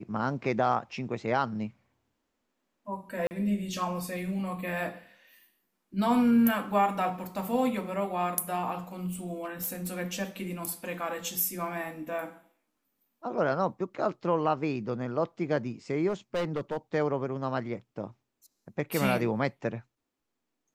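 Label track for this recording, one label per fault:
3.270000	3.310000	drop-out 39 ms
9.440000	9.890000	clipping −29.5 dBFS
16.080000	16.780000	clipping −26 dBFS

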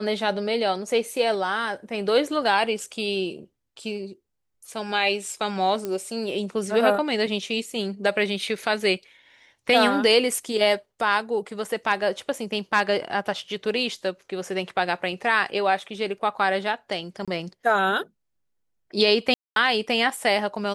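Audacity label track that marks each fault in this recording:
5.850000	5.850000	click −16 dBFS
17.250000	17.280000	drop-out 26 ms
19.340000	19.560000	drop-out 222 ms

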